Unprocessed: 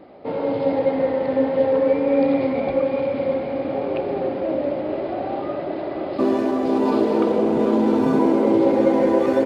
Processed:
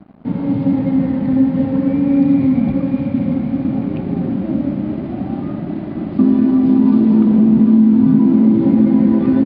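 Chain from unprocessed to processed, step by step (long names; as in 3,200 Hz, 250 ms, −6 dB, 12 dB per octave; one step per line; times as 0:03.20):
low shelf with overshoot 320 Hz +14 dB, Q 3
downward compressor, threshold −5 dBFS, peak gain reduction 7.5 dB
dead-zone distortion −37 dBFS
high-frequency loss of the air 140 metres
downsampling to 11,025 Hz
level −2 dB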